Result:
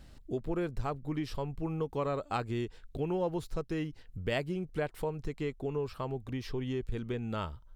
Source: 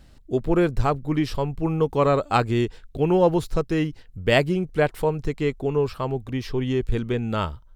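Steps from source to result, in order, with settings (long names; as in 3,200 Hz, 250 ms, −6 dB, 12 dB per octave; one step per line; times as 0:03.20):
downward compressor 2 to 1, threshold −36 dBFS, peak gain reduction 12.5 dB
level −2.5 dB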